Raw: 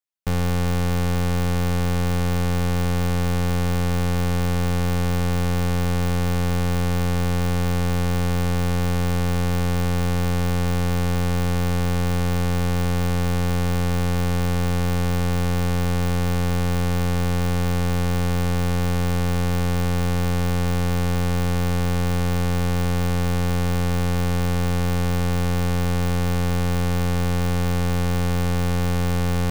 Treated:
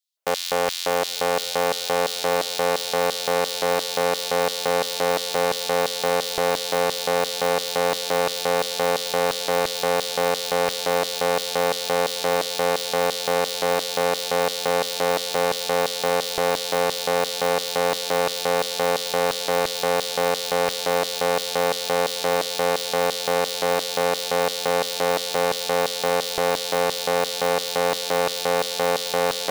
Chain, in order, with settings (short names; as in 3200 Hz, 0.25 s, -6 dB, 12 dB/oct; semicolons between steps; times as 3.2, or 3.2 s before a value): LFO high-pass square 2.9 Hz 560–3900 Hz; diffused feedback echo 0.917 s, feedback 70%, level -15.5 dB; gain +5.5 dB